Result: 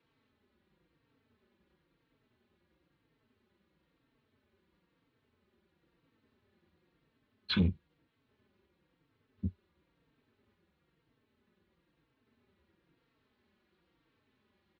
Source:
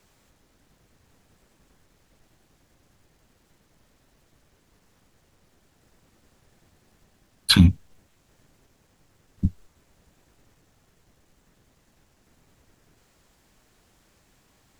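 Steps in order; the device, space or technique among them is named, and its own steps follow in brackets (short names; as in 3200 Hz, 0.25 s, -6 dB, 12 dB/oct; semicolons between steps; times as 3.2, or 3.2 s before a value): bell 4100 Hz +5.5 dB 0.21 oct; barber-pole flanger into a guitar amplifier (endless flanger 3.9 ms -1 Hz; soft clip -12.5 dBFS, distortion -12 dB; speaker cabinet 75–3500 Hz, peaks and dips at 120 Hz -4 dB, 240 Hz +3 dB, 370 Hz +5 dB, 710 Hz -8 dB); gain -8 dB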